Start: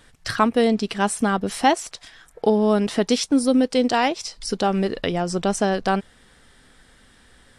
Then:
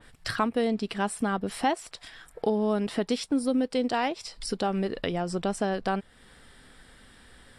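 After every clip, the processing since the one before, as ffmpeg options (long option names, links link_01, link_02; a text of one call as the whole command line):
ffmpeg -i in.wav -af "equalizer=frequency=6300:width_type=o:width=0.23:gain=-9.5,acompressor=threshold=-36dB:ratio=1.5,adynamicequalizer=threshold=0.00708:dfrequency=3000:dqfactor=0.7:tfrequency=3000:tqfactor=0.7:attack=5:release=100:ratio=0.375:range=1.5:mode=cutabove:tftype=highshelf" out.wav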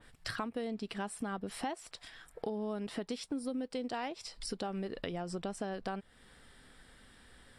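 ffmpeg -i in.wav -af "acompressor=threshold=-30dB:ratio=3,volume=-5.5dB" out.wav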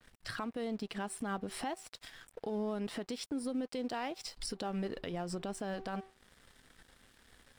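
ffmpeg -i in.wav -af "bandreject=frequency=383:width_type=h:width=4,bandreject=frequency=766:width_type=h:width=4,bandreject=frequency=1149:width_type=h:width=4,aeval=exprs='sgn(val(0))*max(abs(val(0))-0.00106,0)':channel_layout=same,alimiter=level_in=7.5dB:limit=-24dB:level=0:latency=1:release=82,volume=-7.5dB,volume=3dB" out.wav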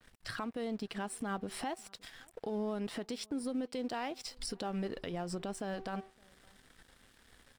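ffmpeg -i in.wav -filter_complex "[0:a]asplit=2[link_01][link_02];[link_02]adelay=565.6,volume=-28dB,highshelf=frequency=4000:gain=-12.7[link_03];[link_01][link_03]amix=inputs=2:normalize=0" out.wav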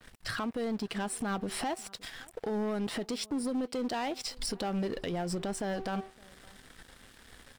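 ffmpeg -i in.wav -af "asoftclip=type=tanh:threshold=-35.5dB,volume=8dB" out.wav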